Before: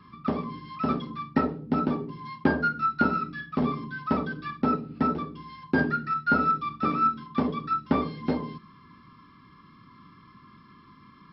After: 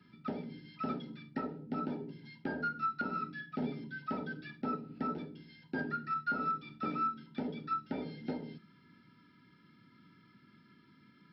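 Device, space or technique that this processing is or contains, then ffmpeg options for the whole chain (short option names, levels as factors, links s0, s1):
PA system with an anti-feedback notch: -af "highpass=130,asuperstop=centerf=1100:order=20:qfactor=4.6,alimiter=limit=0.112:level=0:latency=1:release=211,volume=0.447"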